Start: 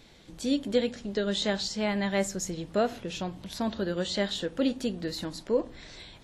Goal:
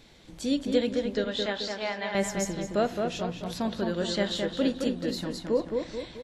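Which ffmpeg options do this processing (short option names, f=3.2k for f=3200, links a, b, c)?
-filter_complex "[0:a]asettb=1/sr,asplit=3[a][b][c];[a]atrim=end=1.244[d];[b]atrim=start=1.24:end=2.15,asetpts=PTS-STARTPTS,afade=t=in:d=0.004:c=qsin,afade=t=out:st=0.906:d=0.004:c=qsin,acrossover=split=440 4900:gain=0.126 1 0.2[e][f][g];[e][f][g]amix=inputs=3:normalize=0[h];[c]atrim=start=2.146[i];[d][h]acrossfade=d=0.004:c1=hsin:c2=qsin[j];[j][i]acrossfade=d=0.004:c1=qsin:c2=hsin,asplit=2[k][l];[l]adelay=217,lowpass=f=2.7k:p=1,volume=-4dB,asplit=2[m][n];[n]adelay=217,lowpass=f=2.7k:p=1,volume=0.5,asplit=2[o][p];[p]adelay=217,lowpass=f=2.7k:p=1,volume=0.5,asplit=2[q][r];[r]adelay=217,lowpass=f=2.7k:p=1,volume=0.5,asplit=2[s][t];[t]adelay=217,lowpass=f=2.7k:p=1,volume=0.5,asplit=2[u][v];[v]adelay=217,lowpass=f=2.7k:p=1,volume=0.5[w];[k][m][o][q][s][u][w]amix=inputs=7:normalize=0"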